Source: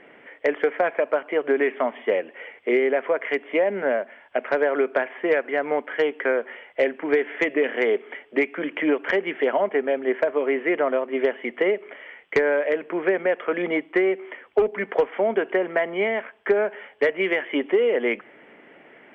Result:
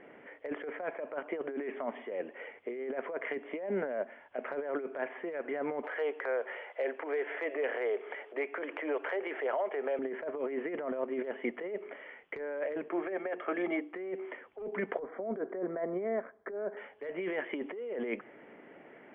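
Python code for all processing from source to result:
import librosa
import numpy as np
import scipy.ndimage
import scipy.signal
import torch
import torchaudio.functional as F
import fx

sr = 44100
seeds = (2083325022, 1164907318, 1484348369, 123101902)

y = fx.chain(x, sr, fx.transient(attack_db=-9, sustain_db=7),
    fx.ladder_highpass(hz=370.0, resonance_pct=20),
    fx.band_squash(depth_pct=70), at=(5.83, 9.99))
y = fx.chain(y, sr, fx.highpass(hz=330.0, slope=12),
    fx.hum_notches(base_hz=60, count=8),
    fx.notch_comb(f0_hz=490.0), at=(12.88, 13.94))
y = fx.chain(y, sr, fx.moving_average(points=16),
    fx.notch(hz=880.0, q=6.2), at=(14.99, 16.77))
y = fx.lowpass(y, sr, hz=1200.0, slope=6)
y = fx.over_compress(y, sr, threshold_db=-28.0, ratio=-1.0)
y = F.gain(torch.from_numpy(y), -6.5).numpy()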